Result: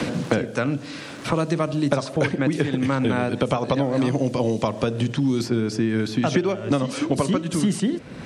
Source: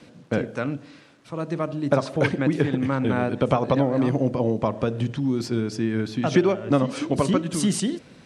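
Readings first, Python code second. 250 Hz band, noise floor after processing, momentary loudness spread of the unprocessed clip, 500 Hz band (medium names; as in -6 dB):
+1.5 dB, -37 dBFS, 8 LU, 0.0 dB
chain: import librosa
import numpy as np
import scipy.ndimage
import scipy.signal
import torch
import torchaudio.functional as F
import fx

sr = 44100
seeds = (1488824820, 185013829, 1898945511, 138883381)

y = fx.high_shelf(x, sr, hz=4100.0, db=6.0)
y = fx.band_squash(y, sr, depth_pct=100)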